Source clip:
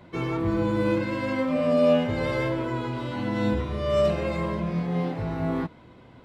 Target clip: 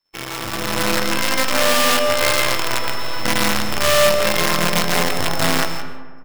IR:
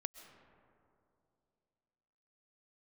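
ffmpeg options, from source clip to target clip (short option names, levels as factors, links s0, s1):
-filter_complex "[0:a]asettb=1/sr,asplit=3[s0][s1][s2];[s0]atrim=end=1.214[s3];[s1]atrim=start=1.21:end=3.25,asetpts=PTS-STARTPTS,afade=t=in:d=0.004:c=qsin,afade=t=out:st=2.036:d=0.004:c=qsin,equalizer=f=190:w=1.5:g=-11.5[s4];[s2]atrim=start=3.246[s5];[s3][s4]acrossfade=d=0.004:c1=hsin:c2=qsin[s6];[s6][s5]acrossfade=d=0.004:c1=qsin:c2=hsin,alimiter=limit=0.126:level=0:latency=1:release=356,acrusher=bits=5:dc=4:mix=0:aa=0.000001,aeval=exprs='val(0)+0.00447*sin(2*PI*5300*n/s)':c=same,agate=range=0.0251:threshold=0.00708:ratio=16:detection=peak,tiltshelf=f=690:g=-6,asplit=2[s7][s8];[s8]adelay=169.1,volume=0.316,highshelf=f=4000:g=-3.8[s9];[s7][s9]amix=inputs=2:normalize=0[s10];[1:a]atrim=start_sample=2205[s11];[s10][s11]afir=irnorm=-1:irlink=0,dynaudnorm=f=150:g=9:m=3.98"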